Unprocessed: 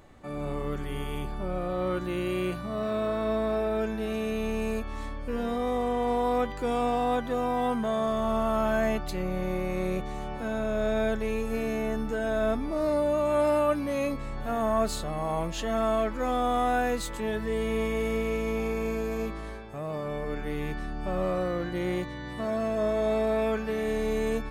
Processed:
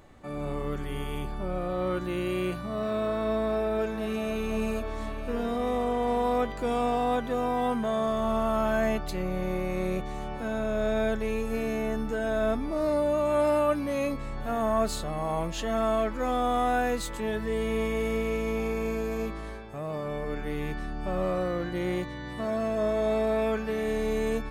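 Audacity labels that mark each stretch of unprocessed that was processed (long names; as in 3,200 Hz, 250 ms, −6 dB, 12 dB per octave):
3.260000	4.280000	delay throw 520 ms, feedback 80%, level −9.5 dB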